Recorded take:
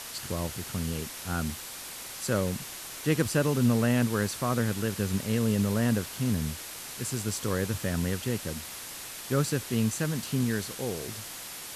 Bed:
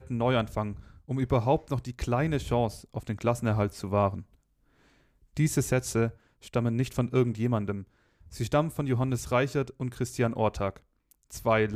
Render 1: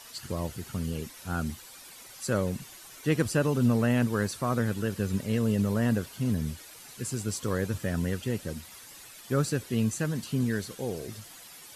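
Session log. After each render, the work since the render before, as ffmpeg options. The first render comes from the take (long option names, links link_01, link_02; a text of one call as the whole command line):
ffmpeg -i in.wav -af "afftdn=noise_reduction=11:noise_floor=-41" out.wav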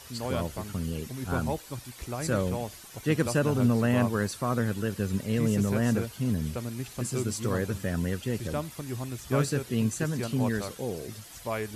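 ffmpeg -i in.wav -i bed.wav -filter_complex "[1:a]volume=-8dB[link_01];[0:a][link_01]amix=inputs=2:normalize=0" out.wav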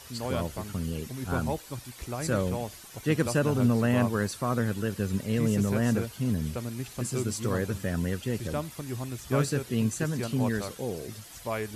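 ffmpeg -i in.wav -af anull out.wav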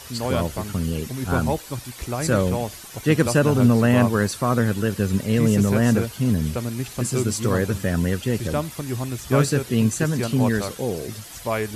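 ffmpeg -i in.wav -af "volume=7.5dB" out.wav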